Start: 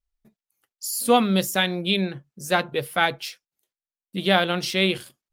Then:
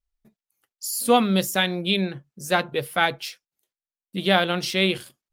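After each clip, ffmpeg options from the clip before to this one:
ffmpeg -i in.wav -af anull out.wav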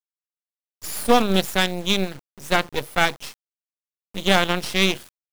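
ffmpeg -i in.wav -af "acrusher=bits=4:dc=4:mix=0:aa=0.000001,aeval=exprs='0.794*(cos(1*acos(clip(val(0)/0.794,-1,1)))-cos(1*PI/2))+0.126*(cos(6*acos(clip(val(0)/0.794,-1,1)))-cos(6*PI/2))':channel_layout=same" out.wav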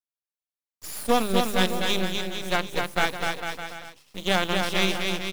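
ffmpeg -i in.wav -filter_complex "[0:a]bandreject=frequency=50:width_type=h:width=6,bandreject=frequency=100:width_type=h:width=6,bandreject=frequency=150:width_type=h:width=6,bandreject=frequency=200:width_type=h:width=6,asplit=2[link_01][link_02];[link_02]aecho=0:1:250|450|610|738|840.4:0.631|0.398|0.251|0.158|0.1[link_03];[link_01][link_03]amix=inputs=2:normalize=0,volume=-5.5dB" out.wav

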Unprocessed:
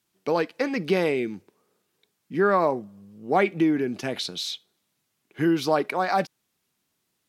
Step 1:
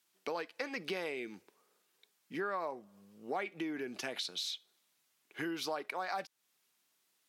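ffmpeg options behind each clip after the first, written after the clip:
ffmpeg -i in.wav -af "highpass=frequency=820:poles=1,acompressor=threshold=-38dB:ratio=3" out.wav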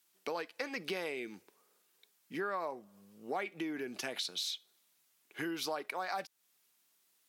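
ffmpeg -i in.wav -af "highshelf=frequency=8700:gain=7" out.wav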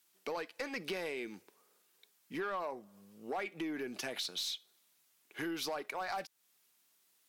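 ffmpeg -i in.wav -af "asoftclip=type=tanh:threshold=-31dB,aeval=exprs='0.0282*(cos(1*acos(clip(val(0)/0.0282,-1,1)))-cos(1*PI/2))+0.000398*(cos(4*acos(clip(val(0)/0.0282,-1,1)))-cos(4*PI/2))':channel_layout=same,volume=1dB" out.wav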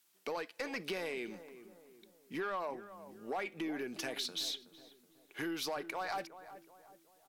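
ffmpeg -i in.wav -filter_complex "[0:a]asplit=2[link_01][link_02];[link_02]adelay=373,lowpass=frequency=1200:poles=1,volume=-12.5dB,asplit=2[link_03][link_04];[link_04]adelay=373,lowpass=frequency=1200:poles=1,volume=0.48,asplit=2[link_05][link_06];[link_06]adelay=373,lowpass=frequency=1200:poles=1,volume=0.48,asplit=2[link_07][link_08];[link_08]adelay=373,lowpass=frequency=1200:poles=1,volume=0.48,asplit=2[link_09][link_10];[link_10]adelay=373,lowpass=frequency=1200:poles=1,volume=0.48[link_11];[link_01][link_03][link_05][link_07][link_09][link_11]amix=inputs=6:normalize=0" out.wav

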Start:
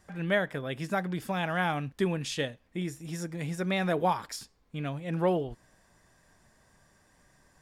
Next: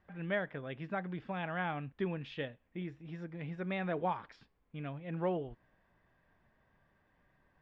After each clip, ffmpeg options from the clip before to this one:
ffmpeg -i in.wav -af "lowpass=frequency=3100:width=0.5412,lowpass=frequency=3100:width=1.3066,volume=-7.5dB" out.wav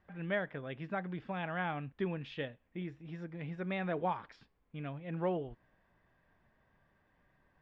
ffmpeg -i in.wav -af anull out.wav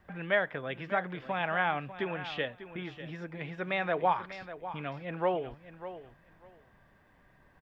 ffmpeg -i in.wav -filter_complex "[0:a]acrossover=split=460|2600[link_01][link_02][link_03];[link_01]acompressor=threshold=-51dB:ratio=4[link_04];[link_04][link_02][link_03]amix=inputs=3:normalize=0,aecho=1:1:596|1192:0.224|0.0403,volume=8.5dB" out.wav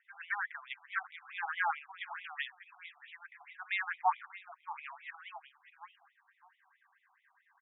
ffmpeg -i in.wav -af "afftfilt=real='re*between(b*sr/1024,960*pow(2800/960,0.5+0.5*sin(2*PI*4.6*pts/sr))/1.41,960*pow(2800/960,0.5+0.5*sin(2*PI*4.6*pts/sr))*1.41)':imag='im*between(b*sr/1024,960*pow(2800/960,0.5+0.5*sin(2*PI*4.6*pts/sr))/1.41,960*pow(2800/960,0.5+0.5*sin(2*PI*4.6*pts/sr))*1.41)':win_size=1024:overlap=0.75" out.wav

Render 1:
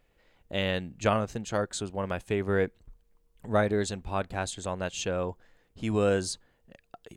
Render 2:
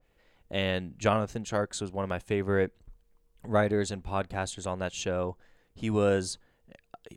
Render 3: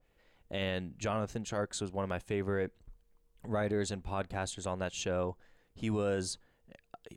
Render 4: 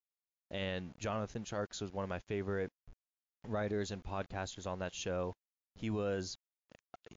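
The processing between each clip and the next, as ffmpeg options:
ffmpeg -i in.wav -af "adynamicequalizer=threshold=0.00891:dfrequency=1700:dqfactor=0.7:tfrequency=1700:tqfactor=0.7:attack=5:release=100:ratio=0.375:range=1.5:mode=cutabove:tftype=highshelf" out.wav
ffmpeg -i in.wav -af "alimiter=limit=-21dB:level=0:latency=1:release=28,volume=-2.5dB" out.wav
ffmpeg -i in.wav -af "aeval=exprs='val(0)*gte(abs(val(0)),0.00299)':channel_layout=same,volume=-3.5dB" -ar 16000 -c:a libmp3lame -b:a 56k out.mp3

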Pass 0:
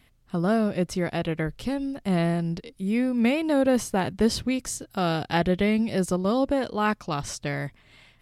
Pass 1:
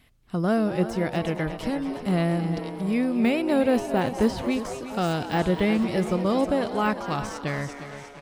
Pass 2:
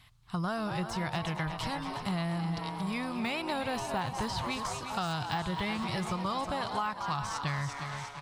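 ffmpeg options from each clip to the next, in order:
ffmpeg -i in.wav -filter_complex "[0:a]asplit=2[link_01][link_02];[link_02]aecho=0:1:356|712|1068|1424|1780:0.224|0.105|0.0495|0.0232|0.0109[link_03];[link_01][link_03]amix=inputs=2:normalize=0,deesser=0.85,asplit=2[link_04][link_05];[link_05]asplit=7[link_06][link_07][link_08][link_09][link_10][link_11][link_12];[link_06]adelay=230,afreqshift=140,volume=-13dB[link_13];[link_07]adelay=460,afreqshift=280,volume=-17.3dB[link_14];[link_08]adelay=690,afreqshift=420,volume=-21.6dB[link_15];[link_09]adelay=920,afreqshift=560,volume=-25.9dB[link_16];[link_10]adelay=1150,afreqshift=700,volume=-30.2dB[link_17];[link_11]adelay=1380,afreqshift=840,volume=-34.5dB[link_18];[link_12]adelay=1610,afreqshift=980,volume=-38.8dB[link_19];[link_13][link_14][link_15][link_16][link_17][link_18][link_19]amix=inputs=7:normalize=0[link_20];[link_04][link_20]amix=inputs=2:normalize=0" out.wav
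ffmpeg -i in.wav -filter_complex "[0:a]asplit=2[link_01][link_02];[link_02]asoftclip=type=hard:threshold=-20.5dB,volume=-12dB[link_03];[link_01][link_03]amix=inputs=2:normalize=0,equalizer=frequency=125:width_type=o:width=1:gain=11,equalizer=frequency=250:width_type=o:width=1:gain=-9,equalizer=frequency=500:width_type=o:width=1:gain=-9,equalizer=frequency=1000:width_type=o:width=1:gain=12,equalizer=frequency=4000:width_type=o:width=1:gain=8,equalizer=frequency=8000:width_type=o:width=1:gain=4,acompressor=threshold=-24dB:ratio=6,volume=-5.5dB" out.wav

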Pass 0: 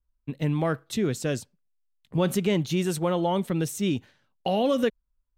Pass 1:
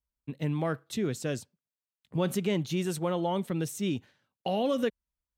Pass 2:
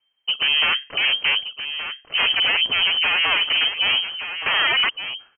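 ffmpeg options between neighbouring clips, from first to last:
ffmpeg -i in.wav -af "highpass=65,volume=-4.5dB" out.wav
ffmpeg -i in.wav -af "aeval=exprs='0.158*sin(PI/2*5.62*val(0)/0.158)':channel_layout=same,aecho=1:1:1172:0.316,lowpass=frequency=2700:width_type=q:width=0.5098,lowpass=frequency=2700:width_type=q:width=0.6013,lowpass=frequency=2700:width_type=q:width=0.9,lowpass=frequency=2700:width_type=q:width=2.563,afreqshift=-3200" out.wav

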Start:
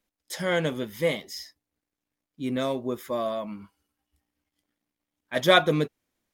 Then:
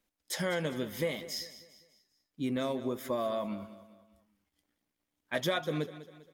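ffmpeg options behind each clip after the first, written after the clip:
ffmpeg -i in.wav -af "acompressor=threshold=-29dB:ratio=6,aecho=1:1:199|398|597|796:0.178|0.0765|0.0329|0.0141" out.wav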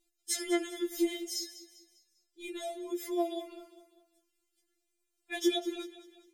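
ffmpeg -i in.wav -af "equalizer=frequency=250:width_type=o:width=1:gain=9,equalizer=frequency=1000:width_type=o:width=1:gain=-11,equalizer=frequency=8000:width_type=o:width=1:gain=8,afftfilt=real='re*4*eq(mod(b,16),0)':imag='im*4*eq(mod(b,16),0)':win_size=2048:overlap=0.75,volume=2dB" out.wav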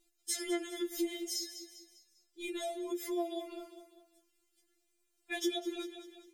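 ffmpeg -i in.wav -af "acompressor=threshold=-41dB:ratio=2,volume=3.5dB" out.wav

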